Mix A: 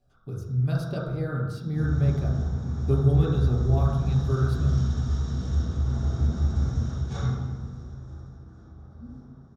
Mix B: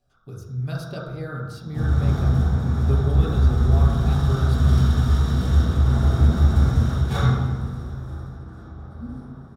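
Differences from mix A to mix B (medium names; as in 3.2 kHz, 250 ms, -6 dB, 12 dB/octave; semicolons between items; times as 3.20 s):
background: remove four-pole ladder low-pass 6.9 kHz, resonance 65%; master: add tilt shelf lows -3.5 dB, about 730 Hz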